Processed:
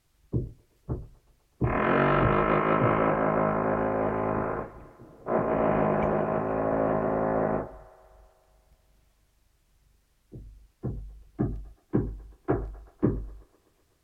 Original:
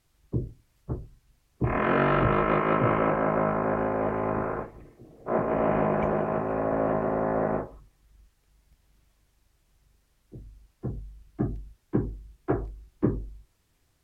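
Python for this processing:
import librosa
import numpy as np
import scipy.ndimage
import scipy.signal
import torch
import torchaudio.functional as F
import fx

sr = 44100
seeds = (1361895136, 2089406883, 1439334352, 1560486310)

y = fx.echo_wet_bandpass(x, sr, ms=125, feedback_pct=71, hz=1100.0, wet_db=-21)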